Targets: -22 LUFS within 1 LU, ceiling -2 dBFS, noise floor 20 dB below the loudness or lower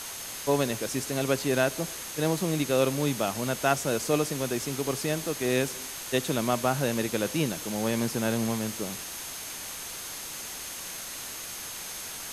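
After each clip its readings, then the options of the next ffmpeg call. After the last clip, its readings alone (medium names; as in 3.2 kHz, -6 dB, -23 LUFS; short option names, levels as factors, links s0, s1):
steady tone 6.4 kHz; tone level -44 dBFS; noise floor -39 dBFS; noise floor target -49 dBFS; loudness -29.0 LUFS; peak level -9.5 dBFS; loudness target -22.0 LUFS
-> -af "bandreject=f=6400:w=30"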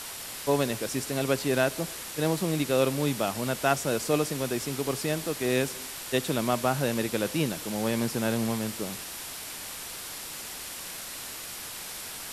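steady tone not found; noise floor -39 dBFS; noise floor target -50 dBFS
-> -af "afftdn=nr=11:nf=-39"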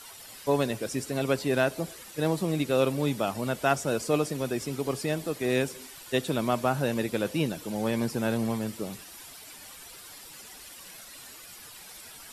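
noise floor -47 dBFS; noise floor target -49 dBFS
-> -af "afftdn=nr=6:nf=-47"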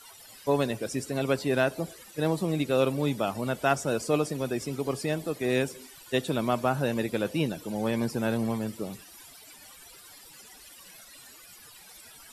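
noise floor -51 dBFS; loudness -29.0 LUFS; peak level -10.0 dBFS; loudness target -22.0 LUFS
-> -af "volume=2.24"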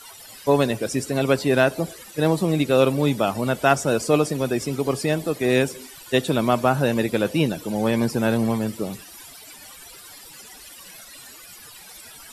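loudness -22.0 LUFS; peak level -3.0 dBFS; noise floor -44 dBFS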